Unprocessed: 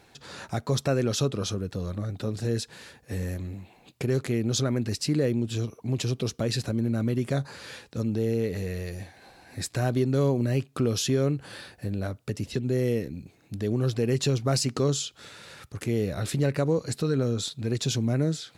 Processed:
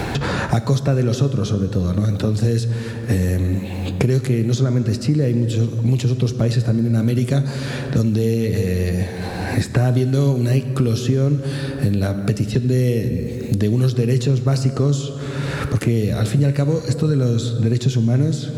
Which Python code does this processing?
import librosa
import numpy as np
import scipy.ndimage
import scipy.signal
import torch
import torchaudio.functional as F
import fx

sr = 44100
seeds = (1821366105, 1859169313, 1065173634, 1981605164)

y = fx.low_shelf(x, sr, hz=250.0, db=10.0)
y = fx.rev_plate(y, sr, seeds[0], rt60_s=1.9, hf_ratio=0.5, predelay_ms=0, drr_db=8.5)
y = fx.band_squash(y, sr, depth_pct=100)
y = y * 10.0 ** (1.5 / 20.0)